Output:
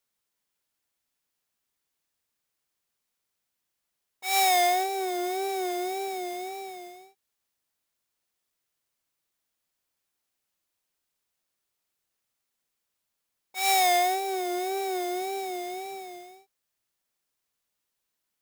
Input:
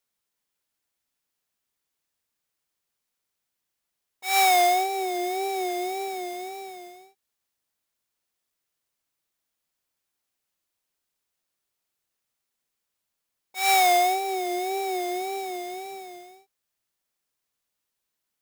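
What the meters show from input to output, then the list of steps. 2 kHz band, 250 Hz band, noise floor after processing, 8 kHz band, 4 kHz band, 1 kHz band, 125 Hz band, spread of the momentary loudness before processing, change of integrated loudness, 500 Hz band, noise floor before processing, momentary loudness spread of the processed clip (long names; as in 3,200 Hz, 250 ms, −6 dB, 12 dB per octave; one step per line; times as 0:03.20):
−3.0 dB, −1.0 dB, −82 dBFS, −1.0 dB, −1.5 dB, −3.0 dB, can't be measured, 20 LU, −3.0 dB, −2.0 dB, −83 dBFS, 19 LU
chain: dynamic equaliser 1,400 Hz, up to −6 dB, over −38 dBFS, Q 1.1
saturating transformer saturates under 1,900 Hz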